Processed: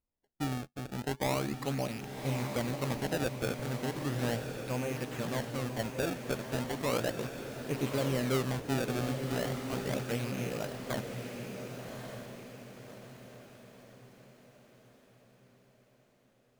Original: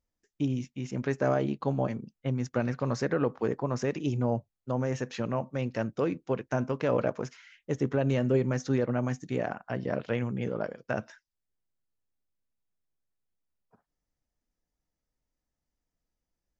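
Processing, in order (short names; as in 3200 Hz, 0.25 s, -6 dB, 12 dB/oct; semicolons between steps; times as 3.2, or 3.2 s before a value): rattling part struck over -40 dBFS, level -28 dBFS; 3.62–4.19 running mean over 40 samples; decimation with a swept rate 25×, swing 160% 0.36 Hz; diffused feedback echo 1.146 s, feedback 45%, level -5.5 dB; gain -5.5 dB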